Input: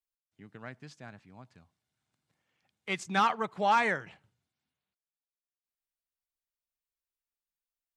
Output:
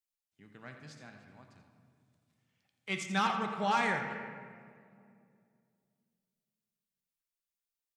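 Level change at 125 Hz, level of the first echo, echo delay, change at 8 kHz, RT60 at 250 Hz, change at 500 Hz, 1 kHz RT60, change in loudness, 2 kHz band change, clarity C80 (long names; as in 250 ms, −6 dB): +1.0 dB, −11.5 dB, 85 ms, +0.5 dB, 3.1 s, −4.0 dB, 1.9 s, −4.0 dB, −2.5 dB, 6.0 dB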